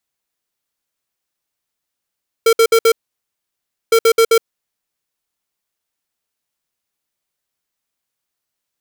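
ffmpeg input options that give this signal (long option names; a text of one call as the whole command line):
ffmpeg -f lavfi -i "aevalsrc='0.316*(2*lt(mod(455*t,1),0.5)-1)*clip(min(mod(mod(t,1.46),0.13),0.07-mod(mod(t,1.46),0.13))/0.005,0,1)*lt(mod(t,1.46),0.52)':duration=2.92:sample_rate=44100" out.wav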